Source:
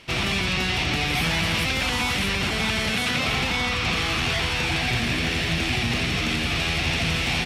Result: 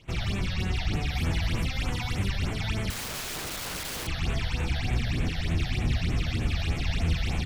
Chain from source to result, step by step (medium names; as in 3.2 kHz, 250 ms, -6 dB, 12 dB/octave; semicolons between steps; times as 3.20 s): octave divider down 1 oct, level +3 dB; phase shifter stages 8, 3.3 Hz, lowest notch 310–5000 Hz; 2.90–4.07 s: integer overflow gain 22.5 dB; bass shelf 110 Hz +6 dB; trim -8 dB